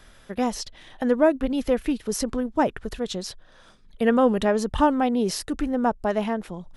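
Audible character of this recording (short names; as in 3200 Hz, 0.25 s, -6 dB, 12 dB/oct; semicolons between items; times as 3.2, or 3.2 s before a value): noise floor -53 dBFS; spectral tilt -5.0 dB/oct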